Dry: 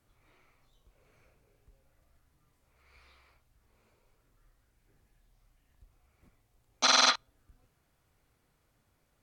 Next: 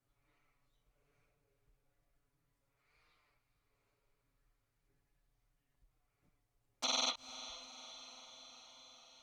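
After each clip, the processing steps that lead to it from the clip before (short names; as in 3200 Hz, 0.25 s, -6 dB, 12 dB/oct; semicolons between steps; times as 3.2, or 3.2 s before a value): envelope flanger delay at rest 7.5 ms, full sweep at -29.5 dBFS; diffused feedback echo 0.463 s, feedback 70%, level -13.5 dB; gain -8.5 dB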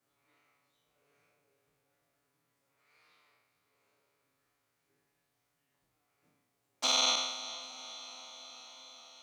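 spectral trails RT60 1.08 s; Bessel high-pass 250 Hz, order 2; gain +4.5 dB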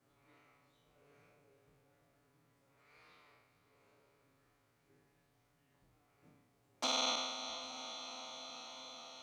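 compressor 1.5:1, threshold -50 dBFS, peak gain reduction 9 dB; tilt -2 dB/oct; gain +5 dB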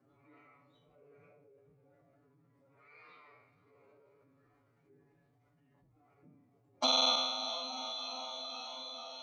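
spectral contrast raised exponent 1.9; HPF 160 Hz 6 dB/oct; gain +6.5 dB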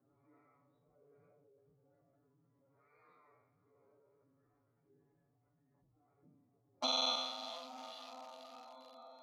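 Wiener smoothing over 15 samples; gain -5.5 dB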